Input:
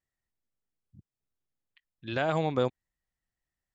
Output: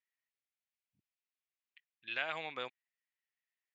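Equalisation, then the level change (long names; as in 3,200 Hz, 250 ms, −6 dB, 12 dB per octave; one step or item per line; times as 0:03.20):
resonant band-pass 2,400 Hz, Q 2.2
+3.0 dB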